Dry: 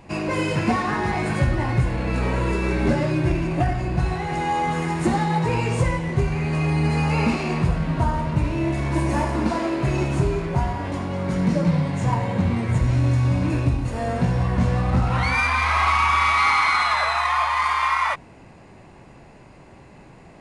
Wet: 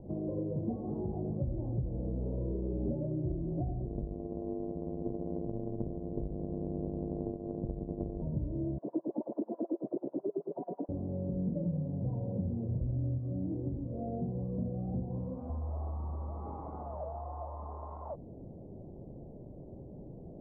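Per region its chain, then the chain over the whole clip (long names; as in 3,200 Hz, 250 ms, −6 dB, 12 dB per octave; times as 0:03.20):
0:03.86–0:08.22: samples sorted by size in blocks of 128 samples + amplitude modulation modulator 100 Hz, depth 100%
0:08.78–0:10.89: auto-filter high-pass sine 9.2 Hz 240–2,100 Hz + high-pass filter 170 Hz 24 dB per octave
0:13.18–0:15.50: high-pass filter 210 Hz 6 dB per octave + double-tracking delay 43 ms −4.5 dB + phaser whose notches keep moving one way rising 1.4 Hz
whole clip: Butterworth low-pass 610 Hz 36 dB per octave; downward compressor 2.5 to 1, threshold −38 dBFS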